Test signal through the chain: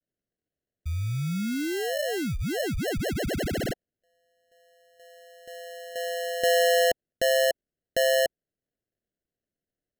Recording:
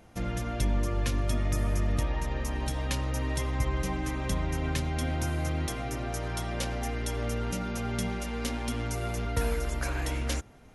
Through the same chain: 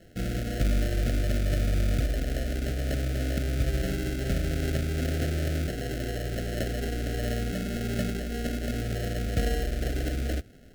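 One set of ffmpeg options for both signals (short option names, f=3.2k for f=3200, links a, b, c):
-af "acrusher=samples=37:mix=1:aa=0.000001,asuperstop=centerf=990:order=8:qfactor=1.6,volume=2dB"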